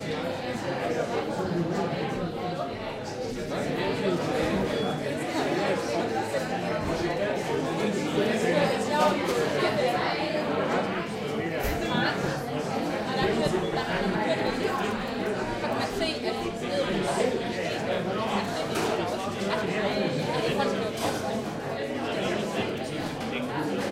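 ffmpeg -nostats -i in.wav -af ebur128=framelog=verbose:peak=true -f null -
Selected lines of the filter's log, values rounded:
Integrated loudness:
  I:         -28.1 LUFS
  Threshold: -38.1 LUFS
Loudness range:
  LRA:         3.7 LU
  Threshold: -47.9 LUFS
  LRA low:   -29.5 LUFS
  LRA high:  -25.8 LUFS
True peak:
  Peak:      -11.0 dBFS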